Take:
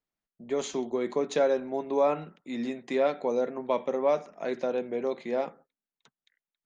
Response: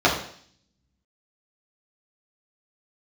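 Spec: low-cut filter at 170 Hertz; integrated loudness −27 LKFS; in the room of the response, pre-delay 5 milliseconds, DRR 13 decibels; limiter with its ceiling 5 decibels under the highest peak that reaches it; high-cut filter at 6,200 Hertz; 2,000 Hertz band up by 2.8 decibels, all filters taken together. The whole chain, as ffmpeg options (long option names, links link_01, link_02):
-filter_complex "[0:a]highpass=170,lowpass=6200,equalizer=frequency=2000:width_type=o:gain=3.5,alimiter=limit=-18.5dB:level=0:latency=1,asplit=2[link_01][link_02];[1:a]atrim=start_sample=2205,adelay=5[link_03];[link_02][link_03]afir=irnorm=-1:irlink=0,volume=-33.5dB[link_04];[link_01][link_04]amix=inputs=2:normalize=0,volume=4dB"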